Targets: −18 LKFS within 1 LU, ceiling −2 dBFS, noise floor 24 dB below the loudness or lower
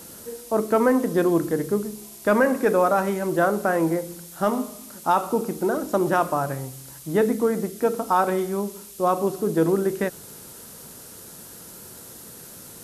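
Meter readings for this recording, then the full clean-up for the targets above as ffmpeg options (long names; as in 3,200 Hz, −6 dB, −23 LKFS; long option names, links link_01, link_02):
background noise floor −43 dBFS; target noise floor −47 dBFS; integrated loudness −23.0 LKFS; sample peak −8.5 dBFS; target loudness −18.0 LKFS
→ -af "afftdn=noise_reduction=6:noise_floor=-43"
-af "volume=5dB"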